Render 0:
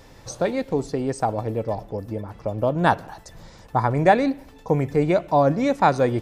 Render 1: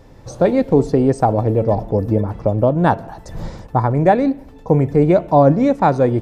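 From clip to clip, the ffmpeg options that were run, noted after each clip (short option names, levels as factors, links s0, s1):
-af "tiltshelf=f=1100:g=6,bandreject=f=225.6:t=h:w=4,bandreject=f=451.2:t=h:w=4,bandreject=f=676.8:t=h:w=4,bandreject=f=902.4:t=h:w=4,dynaudnorm=f=230:g=3:m=5.62,volume=0.891"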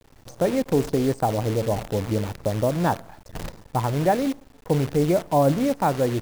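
-af "acrusher=bits=5:dc=4:mix=0:aa=0.000001,volume=0.422"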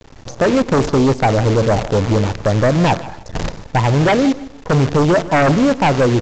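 -af "aresample=16000,aeval=exprs='0.355*sin(PI/2*2.51*val(0)/0.355)':c=same,aresample=44100,aecho=1:1:153|306:0.126|0.0315"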